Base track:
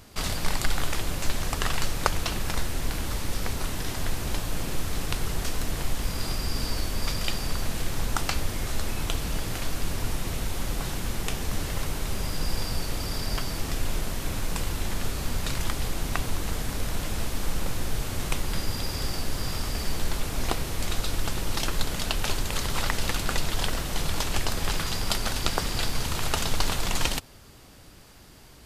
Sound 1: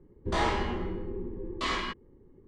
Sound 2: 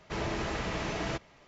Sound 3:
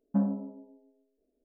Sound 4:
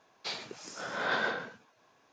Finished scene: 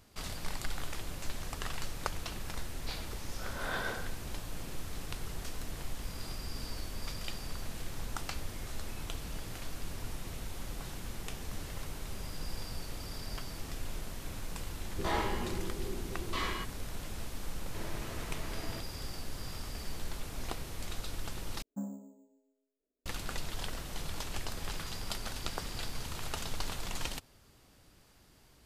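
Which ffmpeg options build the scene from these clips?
-filter_complex "[0:a]volume=0.266[s0];[2:a]bandreject=f=820:w=19[s1];[3:a]acrusher=samples=6:mix=1:aa=0.000001[s2];[s0]asplit=2[s3][s4];[s3]atrim=end=21.624[s5];[s2]atrim=end=1.44,asetpts=PTS-STARTPTS,volume=0.237[s6];[s4]atrim=start=23.056[s7];[4:a]atrim=end=2.12,asetpts=PTS-STARTPTS,volume=0.473,afade=t=in:d=0.004:c=hsin,afade=t=out:st=2.116:d=0.004:c=hsin,adelay=2620[s8];[1:a]atrim=end=2.47,asetpts=PTS-STARTPTS,volume=0.562,afade=t=in:d=0.004:c=hsin,afade=t=out:st=2.466:d=0.004:c=hsin,adelay=14720[s9];[s1]atrim=end=1.47,asetpts=PTS-STARTPTS,volume=0.282,afade=t=in:d=0.004:c=hsin,afade=t=out:st=1.466:d=0.004:c=hsin,adelay=17630[s10];[s5][s6]acrossfade=d=0.004:c1=hsin:c2=hsin[s11];[s11][s7]acrossfade=d=0.004:c1=hsin:c2=hsin[s12];[s12][s8][s9][s10]amix=inputs=4:normalize=0"

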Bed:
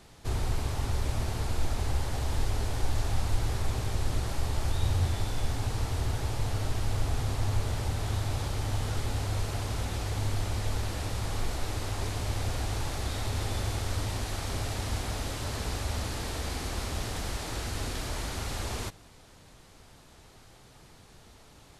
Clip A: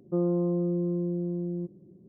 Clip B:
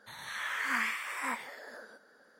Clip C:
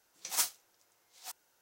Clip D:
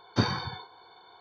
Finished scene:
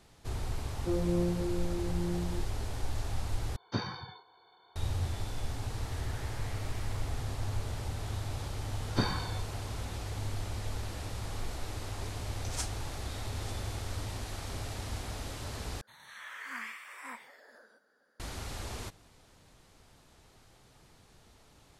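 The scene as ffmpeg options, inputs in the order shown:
-filter_complex "[4:a]asplit=2[s0][s1];[2:a]asplit=2[s2][s3];[0:a]volume=0.501[s4];[1:a]flanger=delay=19:depth=3.8:speed=1.1[s5];[s2]acompressor=threshold=0.0141:ratio=6:attack=3.2:release=140:knee=1:detection=peak[s6];[3:a]lowpass=f=9800:w=0.5412,lowpass=f=9800:w=1.3066[s7];[s4]asplit=3[s8][s9][s10];[s8]atrim=end=3.564[s11];[s0]atrim=end=1.2,asetpts=PTS-STARTPTS,volume=0.376[s12];[s9]atrim=start=4.756:end=15.814[s13];[s3]atrim=end=2.39,asetpts=PTS-STARTPTS,volume=0.335[s14];[s10]atrim=start=18.196[s15];[s5]atrim=end=2.08,asetpts=PTS-STARTPTS,volume=0.75,afade=t=in:d=0.004:c=hsin,afade=t=out:st=2.076:d=0.004:c=hsin,adelay=740[s16];[s6]atrim=end=2.39,asetpts=PTS-STARTPTS,volume=0.251,afade=t=in:d=0.004:c=hsin,afade=t=out:st=2.386:d=0.004:c=hsin,adelay=5640[s17];[s1]atrim=end=1.2,asetpts=PTS-STARTPTS,volume=0.596,afade=t=in:d=0.004:c=hsin,afade=t=out:st=1.196:d=0.004:c=hsin,adelay=8800[s18];[s7]atrim=end=1.61,asetpts=PTS-STARTPTS,volume=0.473,afade=t=in:d=0.004:c=hsin,afade=t=out:st=1.606:d=0.004:c=hsin,adelay=538020S[s19];[s11][s12]acrossfade=d=0.004:c1=hsin:c2=hsin[s20];[s20][s13]acrossfade=d=0.004:c1=hsin:c2=hsin[s21];[s21][s14]acrossfade=d=0.004:c1=hsin:c2=hsin[s22];[s22][s15]acrossfade=d=0.004:c1=hsin:c2=hsin[s23];[s23][s16][s17][s18][s19]amix=inputs=5:normalize=0"

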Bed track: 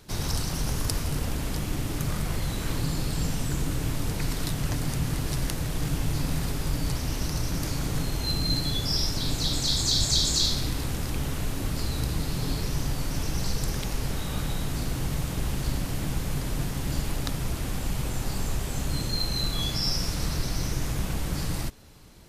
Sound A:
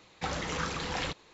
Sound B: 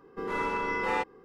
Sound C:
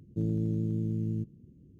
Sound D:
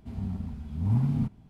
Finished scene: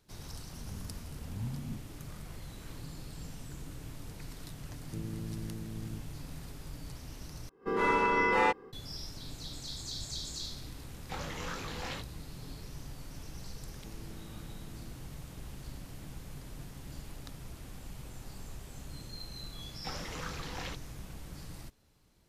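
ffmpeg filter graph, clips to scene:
-filter_complex "[3:a]asplit=2[s0][s1];[1:a]asplit=2[s2][s3];[0:a]volume=0.15[s4];[2:a]dynaudnorm=f=100:g=3:m=6.31[s5];[s2]flanger=delay=19:depth=5.5:speed=2.7[s6];[s1]lowshelf=f=240:g=-11[s7];[s4]asplit=2[s8][s9];[s8]atrim=end=7.494[s10];[s5]atrim=end=1.24,asetpts=PTS-STARTPTS,volume=0.251[s11];[s9]atrim=start=8.726[s12];[4:a]atrim=end=1.49,asetpts=PTS-STARTPTS,volume=0.211,afade=t=in:d=0.004:c=hsin,afade=t=out:st=1.486:d=0.004:c=hsin,adelay=500[s13];[s0]atrim=end=1.79,asetpts=PTS-STARTPTS,volume=0.299,afade=t=in:d=0.004:c=hsin,afade=t=out:st=1.786:d=0.004:c=hsin,adelay=4760[s14];[s6]atrim=end=1.33,asetpts=PTS-STARTPTS,volume=0.668,afade=t=in:d=0.004:c=hsin,afade=t=out:st=1.326:d=0.004:c=hsin,adelay=10880[s15];[s7]atrim=end=1.79,asetpts=PTS-STARTPTS,volume=0.168,afade=t=in:d=0.004:c=hsin,afade=t=out:st=1.786:d=0.004:c=hsin,adelay=13680[s16];[s3]atrim=end=1.33,asetpts=PTS-STARTPTS,volume=0.398,afade=t=in:d=0.004:c=hsin,afade=t=out:st=1.326:d=0.004:c=hsin,adelay=19630[s17];[s10][s11]acrossfade=d=0.004:c1=hsin:c2=hsin[s18];[s18][s12]acrossfade=d=0.004:c1=hsin:c2=hsin[s19];[s19][s13][s14][s15][s16][s17]amix=inputs=6:normalize=0"

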